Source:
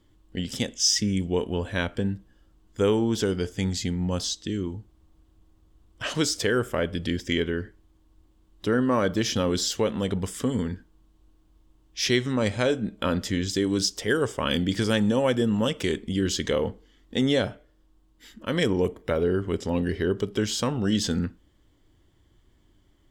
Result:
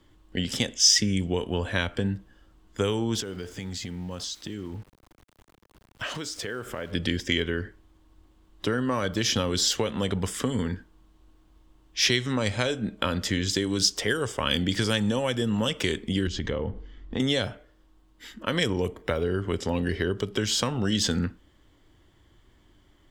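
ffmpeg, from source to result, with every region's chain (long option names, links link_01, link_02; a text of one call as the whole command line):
ffmpeg -i in.wav -filter_complex "[0:a]asettb=1/sr,asplit=3[link_01][link_02][link_03];[link_01]atrim=end=3.204[link_04];[link_02]atrim=start=3.2:end=6.92,asetpts=PTS-STARTPTS,afade=type=in:duration=0.004:curve=qsin,afade=type=out:start_time=3.716:duration=0.004:curve=qsin,acompressor=threshold=-34dB:ratio=10:attack=3.2:release=140:knee=1:detection=peak,aeval=exprs='val(0)*gte(abs(val(0)),0.00224)':channel_layout=same[link_05];[link_03]atrim=start=6.916[link_06];[link_04][link_05]acrossfade=duration=0.004:curve1=hsin:curve2=qsin[link_07];[link_07][link_06]acrossfade=duration=0.004:curve1=qsin:curve2=hsin,asettb=1/sr,asplit=3[link_08][link_09][link_10];[link_08]atrim=end=16.274[link_11];[link_09]atrim=start=16.27:end=17.2,asetpts=PTS-STARTPTS,afade=type=in:duration=0.004:curve=qsin,afade=type=out:start_time=0.926:duration=0.004:curve=qsin,lowpass=9800,aemphasis=mode=reproduction:type=bsi,acompressor=threshold=-32dB:ratio=2.5:attack=3.2:release=140:knee=1:detection=peak[link_12];[link_10]atrim=start=17.196[link_13];[link_11][link_12]acrossfade=duration=0.004:curve1=hsin:curve2=qsin[link_14];[link_14][link_13]acrossfade=duration=0.004:curve1=qsin:curve2=hsin,equalizer=frequency=1500:width=0.38:gain=5.5,acrossover=split=130|3000[link_15][link_16][link_17];[link_16]acompressor=threshold=-26dB:ratio=6[link_18];[link_15][link_18][link_17]amix=inputs=3:normalize=0,volume=1.5dB" out.wav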